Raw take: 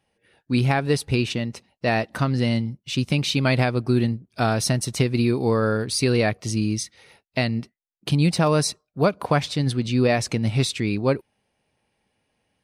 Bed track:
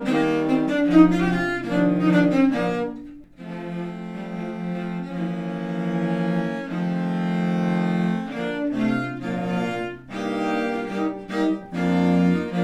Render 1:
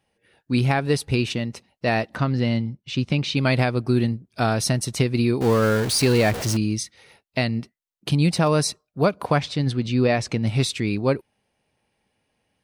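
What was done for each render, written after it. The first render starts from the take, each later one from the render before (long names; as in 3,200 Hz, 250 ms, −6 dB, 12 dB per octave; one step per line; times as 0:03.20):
0:02.15–0:03.37: high-frequency loss of the air 100 metres
0:05.41–0:06.57: converter with a step at zero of −24 dBFS
0:09.38–0:10.47: high-frequency loss of the air 55 metres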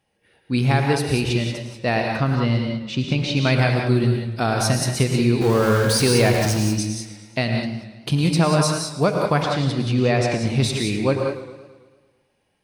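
reverb whose tail is shaped and stops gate 210 ms rising, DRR 2.5 dB
feedback echo with a swinging delay time 110 ms, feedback 59%, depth 101 cents, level −13 dB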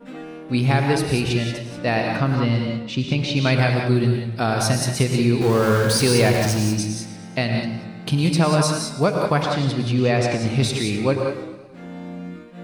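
mix in bed track −15 dB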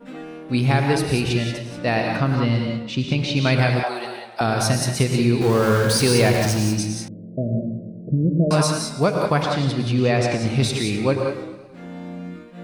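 0:03.83–0:04.41: high-pass with resonance 770 Hz, resonance Q 3.9
0:07.08–0:08.51: Butterworth low-pass 640 Hz 96 dB per octave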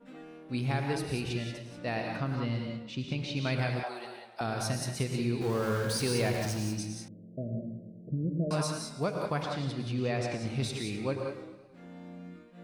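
level −12.5 dB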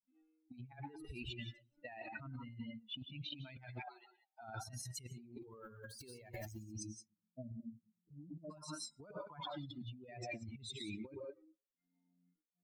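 spectral dynamics exaggerated over time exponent 3
compressor whose output falls as the input rises −50 dBFS, ratio −1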